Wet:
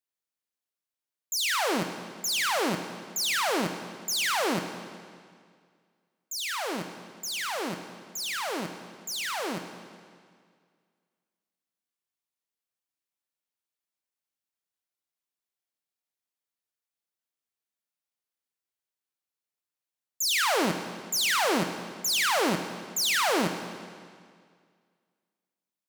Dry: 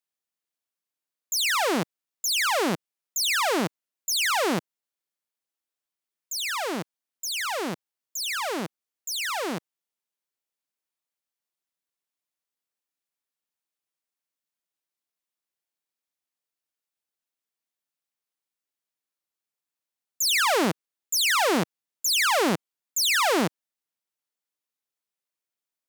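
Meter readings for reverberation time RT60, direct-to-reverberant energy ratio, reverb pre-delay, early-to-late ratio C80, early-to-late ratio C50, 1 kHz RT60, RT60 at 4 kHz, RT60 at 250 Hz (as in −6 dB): 2.0 s, 7.0 dB, 23 ms, 9.0 dB, 8.0 dB, 2.0 s, 1.9 s, 2.0 s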